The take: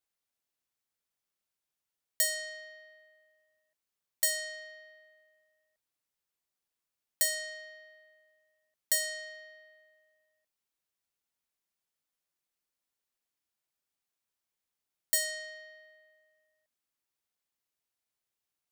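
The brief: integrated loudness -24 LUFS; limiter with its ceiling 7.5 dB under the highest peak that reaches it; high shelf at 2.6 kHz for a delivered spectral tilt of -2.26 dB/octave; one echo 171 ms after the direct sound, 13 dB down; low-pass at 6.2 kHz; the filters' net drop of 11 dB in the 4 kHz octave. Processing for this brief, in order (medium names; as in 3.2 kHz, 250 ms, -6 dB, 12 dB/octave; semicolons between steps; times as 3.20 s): low-pass 6.2 kHz; treble shelf 2.6 kHz -4.5 dB; peaking EQ 4 kHz -9 dB; peak limiter -35 dBFS; delay 171 ms -13 dB; trim +21 dB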